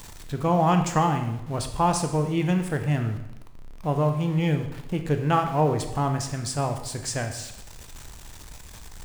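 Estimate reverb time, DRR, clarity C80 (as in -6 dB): 0.85 s, 5.5 dB, 10.5 dB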